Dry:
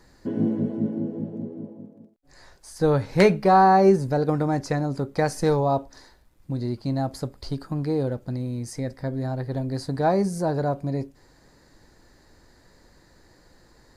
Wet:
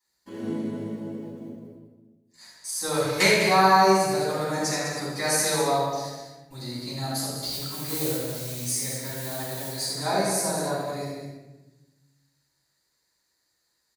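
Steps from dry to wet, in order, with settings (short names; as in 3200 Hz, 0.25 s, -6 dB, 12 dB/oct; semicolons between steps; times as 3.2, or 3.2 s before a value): 7.39–9.73 block floating point 5-bit; HPF 52 Hz; pre-emphasis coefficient 0.97; notch 5100 Hz, Q 18; gate -59 dBFS, range -22 dB; loudspeakers at several distances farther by 28 m -9 dB, 69 m -9 dB; shoebox room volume 570 m³, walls mixed, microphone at 9.6 m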